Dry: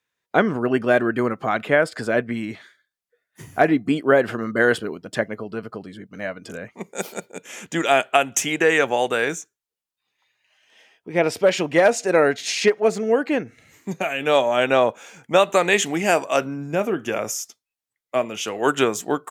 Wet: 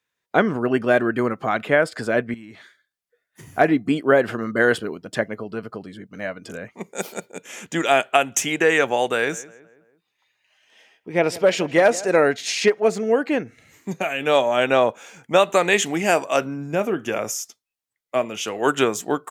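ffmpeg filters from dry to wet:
ffmpeg -i in.wav -filter_complex "[0:a]asettb=1/sr,asplit=3[link_01][link_02][link_03];[link_01]atrim=end=2.344[link_04];[link_02]atrim=start=2.34:end=3.48,asetpts=PTS-STARTPTS,afade=type=in:duration=0.004:curve=qsin,afade=type=out:start_time=1.136:duration=0.004:curve=qsin,acompressor=threshold=-38dB:ratio=5:attack=3.2:release=140:knee=1:detection=peak[link_05];[link_03]atrim=start=3.476[link_06];[link_04][link_05]acrossfade=duration=0.004:curve1=hsin:curve2=qsin[link_07];[link_07][link_06]acrossfade=duration=0.004:curve1=qsin:curve2=hsin,asettb=1/sr,asplit=3[link_08][link_09][link_10];[link_08]atrim=end=9.154[link_11];[link_09]atrim=start=9.15:end=12.21,asetpts=PTS-STARTPTS,afade=type=in:duration=0.004:curve=qsin,afade=type=out:start_time=3.056:duration=0.004:curve=qsin,asplit=2[link_12][link_13];[link_13]adelay=164,lowpass=frequency=2100:poles=1,volume=-18dB,asplit=2[link_14][link_15];[link_15]adelay=164,lowpass=frequency=2100:poles=1,volume=0.5,asplit=2[link_16][link_17];[link_17]adelay=164,lowpass=frequency=2100:poles=1,volume=0.5,asplit=2[link_18][link_19];[link_19]adelay=164,lowpass=frequency=2100:poles=1,volume=0.5[link_20];[link_12][link_14][link_16][link_18][link_20]amix=inputs=5:normalize=0,atrim=end_sample=134946[link_21];[link_10]atrim=start=12.206[link_22];[link_11][link_21]acrossfade=duration=0.004:curve1=hsin:curve2=qsin[link_23];[link_23][link_22]acrossfade=duration=0.004:curve1=qsin:curve2=hsin" out.wav

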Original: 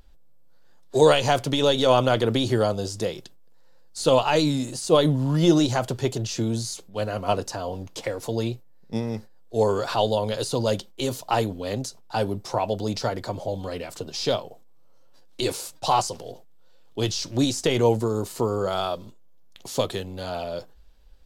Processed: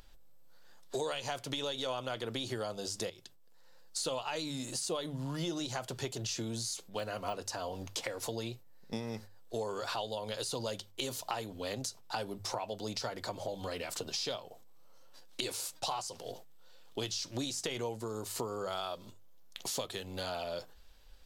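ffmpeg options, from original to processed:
ffmpeg -i in.wav -filter_complex "[0:a]asettb=1/sr,asplit=3[link_01][link_02][link_03];[link_01]atrim=end=6.884[link_04];[link_02]atrim=start=6.88:end=7.38,asetpts=PTS-STARTPTS,afade=type=in:duration=0.004:curve=qsin,afade=type=out:start_time=0.496:duration=0.004:curve=qsin,deesser=0.95[link_05];[link_03]atrim=start=7.376[link_06];[link_04][link_05]acrossfade=duration=0.004:curve1=hsin:curve2=qsin[link_07];[link_07][link_06]acrossfade=duration=0.004:curve1=qsin:curve2=hsin,asplit=2[link_08][link_09];[link_08]atrim=end=3.1,asetpts=PTS-STARTPTS,afade=type=out:start_time=3.096:duration=0.004:curve=hsin:silence=0.211349[link_10];[link_09]atrim=start=3.1,asetpts=PTS-STARTPTS,afade=type=in:duration=1.13:curve=qsin:silence=0.211349[link_11];[link_10][link_11]concat=n=2:v=0:a=1,tiltshelf=frequency=730:gain=-4.5,bandreject=frequency=50:width_type=h:width=6,bandreject=frequency=100:width_type=h:width=6,bandreject=frequency=150:width_type=h:width=6,acompressor=threshold=-35dB:ratio=6" out.wav

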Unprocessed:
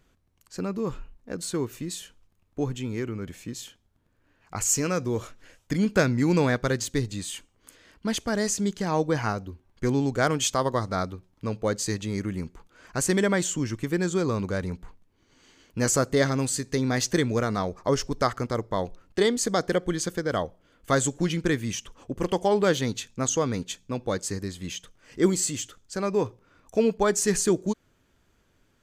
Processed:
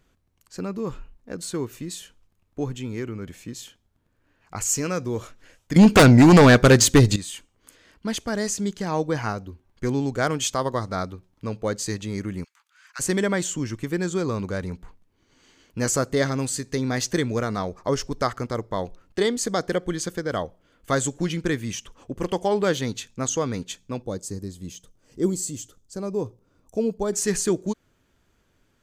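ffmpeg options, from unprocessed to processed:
ffmpeg -i in.wav -filter_complex "[0:a]asettb=1/sr,asplit=3[link_01][link_02][link_03];[link_01]atrim=end=5.764[link_04];[link_02]atrim=start=5.76:end=7.16,asetpts=PTS-STARTPTS,afade=type=in:duration=0.004:curve=qsin,afade=type=out:start_time=1.396:duration=0.004:curve=qsin,aeval=exprs='0.447*sin(PI/2*3.55*val(0)/0.447)':channel_layout=same[link_05];[link_03]atrim=start=7.156[link_06];[link_04][link_05]acrossfade=duration=0.004:curve1=hsin:curve2=qsin[link_07];[link_07][link_06]acrossfade=duration=0.004:curve1=qsin:curve2=hsin,asplit=3[link_08][link_09][link_10];[link_08]afade=type=out:start_time=12.43:duration=0.02[link_11];[link_09]highpass=frequency=1300:width=0.5412,highpass=frequency=1300:width=1.3066,afade=type=in:start_time=12.43:duration=0.02,afade=type=out:start_time=12.99:duration=0.02[link_12];[link_10]afade=type=in:start_time=12.99:duration=0.02[link_13];[link_11][link_12][link_13]amix=inputs=3:normalize=0,asettb=1/sr,asplit=3[link_14][link_15][link_16];[link_14]atrim=end=24.024[link_17];[link_15]atrim=start=24.02:end=27.13,asetpts=PTS-STARTPTS,afade=type=in:duration=0.004:curve=qsin,afade=type=out:start_time=3.106:duration=0.004:curve=qsin,equalizer=frequency=2000:width_type=o:width=2.2:gain=-14.5[link_18];[link_16]atrim=start=27.126[link_19];[link_17][link_18]acrossfade=duration=0.004:curve1=hsin:curve2=qsin[link_20];[link_20][link_19]acrossfade=duration=0.004:curve1=qsin:curve2=hsin" out.wav

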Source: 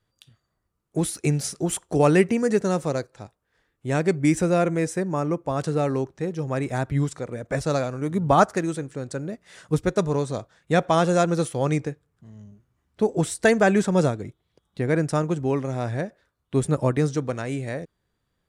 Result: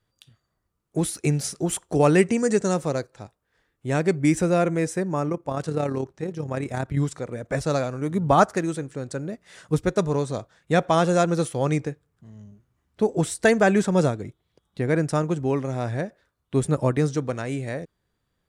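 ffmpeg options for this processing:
ffmpeg -i in.wav -filter_complex "[0:a]asettb=1/sr,asplit=3[link_01][link_02][link_03];[link_01]atrim=end=2.184[link_04];[link_02]atrim=start=2.18:end=2.74,asetpts=PTS-STARTPTS,afade=type=in:duration=0.004:curve=qsin,afade=type=out:start_time=0.556:duration=0.004:curve=qsin,lowpass=frequency=8000:width_type=q:width=2.7[link_05];[link_03]atrim=start=2.736[link_06];[link_04][link_05]acrossfade=duration=0.004:curve1=hsin:curve2=qsin[link_07];[link_07][link_06]acrossfade=duration=0.004:curve1=qsin:curve2=hsin,asettb=1/sr,asplit=3[link_08][link_09][link_10];[link_08]atrim=end=5.294[link_11];[link_09]atrim=start=5.29:end=6.97,asetpts=PTS-STARTPTS,afade=type=in:duration=0.004:curve=qsin,afade=type=out:start_time=1.676:duration=0.004:curve=qsin,tremolo=f=35:d=0.519[link_12];[link_10]atrim=start=6.966[link_13];[link_11][link_12]acrossfade=duration=0.004:curve1=hsin:curve2=qsin[link_14];[link_14][link_13]acrossfade=duration=0.004:curve1=qsin:curve2=hsin" out.wav

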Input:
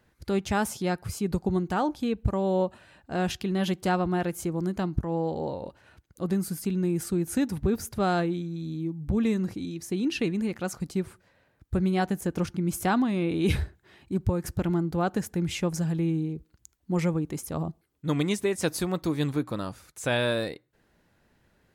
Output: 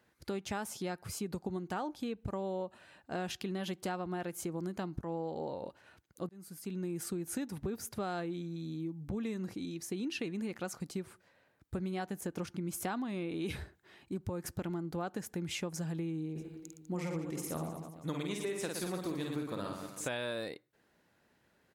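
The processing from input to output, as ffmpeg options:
ffmpeg -i in.wav -filter_complex "[0:a]asplit=3[link_01][link_02][link_03];[link_01]afade=type=out:start_time=16.35:duration=0.02[link_04];[link_02]aecho=1:1:50|115|199.5|309.4|452.2|637.8:0.631|0.398|0.251|0.158|0.1|0.0631,afade=type=in:start_time=16.35:duration=0.02,afade=type=out:start_time=20.07:duration=0.02[link_05];[link_03]afade=type=in:start_time=20.07:duration=0.02[link_06];[link_04][link_05][link_06]amix=inputs=3:normalize=0,asplit=2[link_07][link_08];[link_07]atrim=end=6.29,asetpts=PTS-STARTPTS,afade=type=out:start_time=6.286:duration=0.004:curve=hsin[link_09];[link_08]atrim=start=6.29,asetpts=PTS-STARTPTS,afade=type=in:duration=0.74[link_10];[link_09][link_10]concat=n=2:v=0:a=1,highpass=frequency=220:poles=1,acompressor=threshold=-31dB:ratio=6,volume=-3dB" out.wav

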